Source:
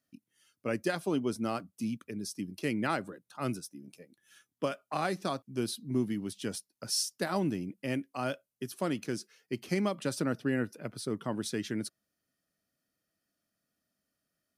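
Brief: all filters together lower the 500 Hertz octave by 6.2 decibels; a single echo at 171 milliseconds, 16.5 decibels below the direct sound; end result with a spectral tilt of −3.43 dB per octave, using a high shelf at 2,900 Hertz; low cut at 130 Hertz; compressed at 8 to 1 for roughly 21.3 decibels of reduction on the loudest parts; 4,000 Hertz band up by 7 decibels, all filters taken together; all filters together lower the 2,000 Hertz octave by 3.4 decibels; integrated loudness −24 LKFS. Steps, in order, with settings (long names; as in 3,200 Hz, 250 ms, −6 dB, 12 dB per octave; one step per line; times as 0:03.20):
high-pass filter 130 Hz
parametric band 500 Hz −8.5 dB
parametric band 2,000 Hz −7.5 dB
high-shelf EQ 2,900 Hz +4.5 dB
parametric band 4,000 Hz +7 dB
downward compressor 8 to 1, threshold −44 dBFS
single-tap delay 171 ms −16.5 dB
level +24 dB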